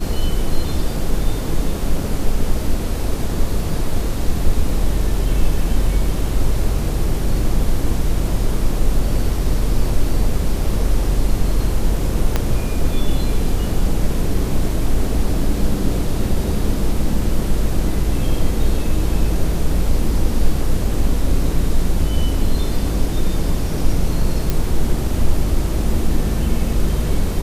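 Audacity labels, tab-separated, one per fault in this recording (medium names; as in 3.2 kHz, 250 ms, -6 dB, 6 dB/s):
12.360000	12.360000	pop -4 dBFS
24.500000	24.500000	pop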